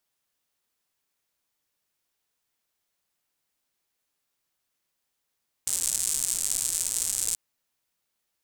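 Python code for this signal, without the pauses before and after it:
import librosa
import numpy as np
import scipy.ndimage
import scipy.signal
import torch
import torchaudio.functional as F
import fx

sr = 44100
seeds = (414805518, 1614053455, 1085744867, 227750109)

y = fx.rain(sr, seeds[0], length_s=1.68, drops_per_s=170.0, hz=8000.0, bed_db=-20.0)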